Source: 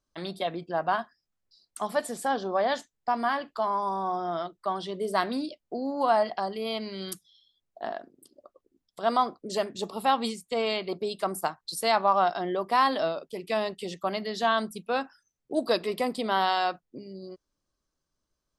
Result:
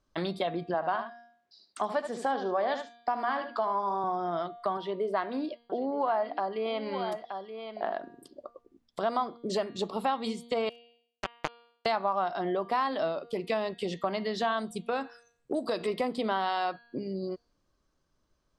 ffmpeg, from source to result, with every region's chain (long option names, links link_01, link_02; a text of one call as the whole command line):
ffmpeg -i in.wav -filter_complex "[0:a]asettb=1/sr,asplit=3[link_01][link_02][link_03];[link_01]atrim=end=0.744[link_04];[link_02]atrim=start=0.74:end=4.04,asetpts=PTS-STARTPTS,afade=type=in:duration=0.004:curve=qsin,afade=type=out:start_time=3.296:duration=0.004:curve=qsin,highpass=210,lowpass=7300,aecho=1:1:75:0.299,atrim=end_sample=145530[link_05];[link_03]atrim=start=4.036[link_06];[link_04][link_05]acrossfade=duration=0.004:curve1=hsin:curve2=qsin[link_07];[link_07][link_06]acrossfade=duration=0.004:curve1=qsin:curve2=hsin,asettb=1/sr,asplit=3[link_08][link_09][link_10];[link_08]atrim=end=4.774[link_11];[link_09]atrim=start=4.77:end=7.94,asetpts=PTS-STARTPTS,afade=type=in:duration=0.004:curve=qsin,afade=type=out:start_time=3.166:duration=0.004:curve=qsin,bass=frequency=250:gain=-10,treble=frequency=4000:gain=-14,aecho=1:1:925:0.178,atrim=end_sample=139797[link_12];[link_10]atrim=start=7.936[link_13];[link_11][link_12]acrossfade=duration=0.004:curve1=hsin:curve2=qsin[link_14];[link_14][link_13]acrossfade=duration=0.004:curve1=qsin:curve2=hsin,asettb=1/sr,asplit=3[link_15][link_16][link_17];[link_15]atrim=end=10.694[link_18];[link_16]atrim=start=10.69:end=11.86,asetpts=PTS-STARTPTS,afade=type=in:duration=0.004:curve=qsin,afade=type=out:start_time=1.166:duration=0.004:curve=qsin,highpass=frequency=370:width=0.5412,highpass=frequency=370:width=1.3066,acrusher=bits=2:mix=0:aa=0.5[link_19];[link_17]atrim=start=11.856[link_20];[link_18][link_19]acrossfade=duration=0.004:curve1=hsin:curve2=qsin[link_21];[link_21][link_20]acrossfade=duration=0.004:curve1=qsin:curve2=hsin,asettb=1/sr,asplit=3[link_22][link_23][link_24];[link_22]atrim=end=14.594[link_25];[link_23]atrim=start=14.59:end=15.88,asetpts=PTS-STARTPTS,afade=type=in:duration=0.004:curve=qsin,afade=type=out:start_time=1.286:duration=0.004:curve=qsin,equalizer=frequency=8200:width_type=o:width=0.5:gain=10.5,acompressor=threshold=-28dB:ratio=2:attack=3.2:release=140:knee=1:detection=peak[link_26];[link_24]atrim=start=15.876[link_27];[link_25][link_26]acrossfade=duration=0.004:curve1=hsin:curve2=qsin[link_28];[link_28][link_27]acrossfade=duration=0.004:curve1=qsin:curve2=hsin,aemphasis=mode=reproduction:type=50fm,bandreject=frequency=235.9:width_type=h:width=4,bandreject=frequency=471.8:width_type=h:width=4,bandreject=frequency=707.7:width_type=h:width=4,bandreject=frequency=943.6:width_type=h:width=4,bandreject=frequency=1179.5:width_type=h:width=4,bandreject=frequency=1415.4:width_type=h:width=4,bandreject=frequency=1651.3:width_type=h:width=4,bandreject=frequency=1887.2:width_type=h:width=4,bandreject=frequency=2123.1:width_type=h:width=4,bandreject=frequency=2359:width_type=h:width=4,bandreject=frequency=2594.9:width_type=h:width=4,bandreject=frequency=2830.8:width_type=h:width=4,bandreject=frequency=3066.7:width_type=h:width=4,bandreject=frequency=3302.6:width_type=h:width=4,bandreject=frequency=3538.5:width_type=h:width=4,bandreject=frequency=3774.4:width_type=h:width=4,bandreject=frequency=4010.3:width_type=h:width=4,bandreject=frequency=4246.2:width_type=h:width=4,bandreject=frequency=4482.1:width_type=h:width=4,bandreject=frequency=4718:width_type=h:width=4,acompressor=threshold=-38dB:ratio=3,volume=8dB" out.wav